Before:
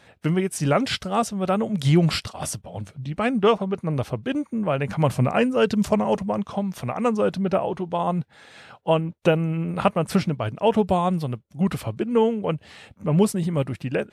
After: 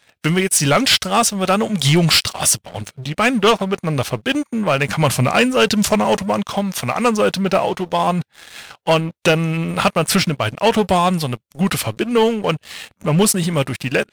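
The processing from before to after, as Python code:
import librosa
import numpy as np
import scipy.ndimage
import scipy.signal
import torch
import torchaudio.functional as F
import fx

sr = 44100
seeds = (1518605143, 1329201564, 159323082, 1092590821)

y = fx.tilt_shelf(x, sr, db=-7.0, hz=1300.0)
y = fx.leveller(y, sr, passes=3)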